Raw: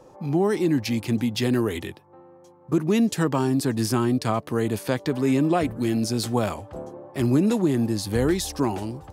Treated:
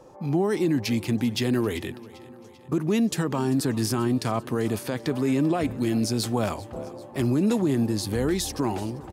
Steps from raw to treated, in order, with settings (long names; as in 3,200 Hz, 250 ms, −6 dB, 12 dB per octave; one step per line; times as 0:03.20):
brickwall limiter −15.5 dBFS, peak gain reduction 7 dB
on a send: repeating echo 392 ms, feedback 56%, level −20 dB